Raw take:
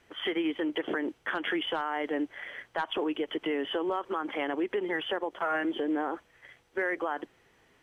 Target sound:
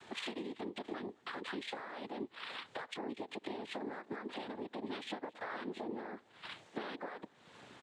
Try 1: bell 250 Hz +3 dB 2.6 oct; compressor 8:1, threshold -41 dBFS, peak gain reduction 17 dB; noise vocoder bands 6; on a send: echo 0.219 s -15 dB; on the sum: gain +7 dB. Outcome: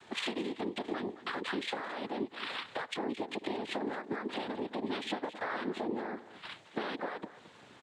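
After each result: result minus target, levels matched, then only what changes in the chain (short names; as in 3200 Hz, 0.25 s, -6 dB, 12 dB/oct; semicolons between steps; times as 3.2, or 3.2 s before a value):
echo-to-direct +11 dB; compressor: peak gain reduction -6 dB
change: echo 0.219 s -26 dB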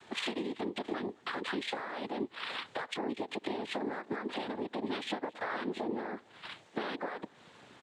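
compressor: peak gain reduction -6 dB
change: compressor 8:1, threshold -48 dBFS, peak gain reduction 23 dB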